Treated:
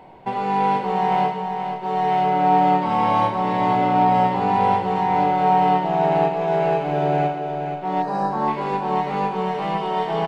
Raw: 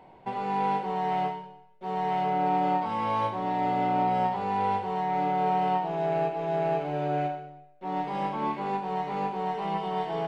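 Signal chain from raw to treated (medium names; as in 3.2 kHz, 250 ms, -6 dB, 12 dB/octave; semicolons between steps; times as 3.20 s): 8.02–8.48 s: brick-wall FIR band-stop 1.9–3.8 kHz; on a send: feedback delay 477 ms, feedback 42%, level -7 dB; on the sum: trim +7.5 dB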